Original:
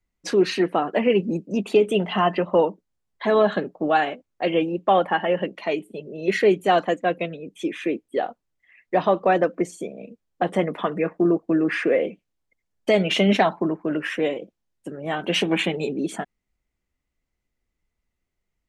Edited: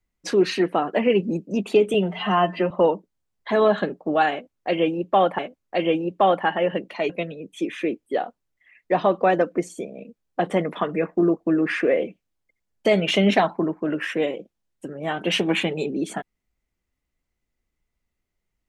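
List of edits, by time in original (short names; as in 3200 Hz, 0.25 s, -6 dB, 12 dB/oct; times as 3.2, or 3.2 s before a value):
1.94–2.45 stretch 1.5×
4.06–5.13 loop, 2 plays
5.77–7.12 cut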